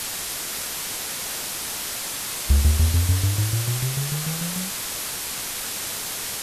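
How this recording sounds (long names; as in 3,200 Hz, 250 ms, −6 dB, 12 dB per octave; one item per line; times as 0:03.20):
tremolo saw down 6.8 Hz, depth 80%
a quantiser's noise floor 6 bits, dither triangular
Ogg Vorbis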